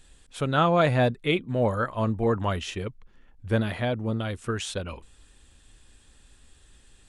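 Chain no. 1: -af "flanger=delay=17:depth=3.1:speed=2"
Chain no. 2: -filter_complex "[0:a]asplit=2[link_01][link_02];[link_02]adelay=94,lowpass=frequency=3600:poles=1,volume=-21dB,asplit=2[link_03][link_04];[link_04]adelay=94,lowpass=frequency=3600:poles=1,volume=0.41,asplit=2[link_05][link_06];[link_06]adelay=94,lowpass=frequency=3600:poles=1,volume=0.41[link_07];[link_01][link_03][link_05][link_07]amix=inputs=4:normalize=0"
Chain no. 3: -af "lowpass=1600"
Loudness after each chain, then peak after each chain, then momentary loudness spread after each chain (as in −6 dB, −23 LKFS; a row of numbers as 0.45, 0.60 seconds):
−29.0, −26.0, −27.0 LKFS; −12.5, −11.0, −11.5 dBFS; 13, 14, 14 LU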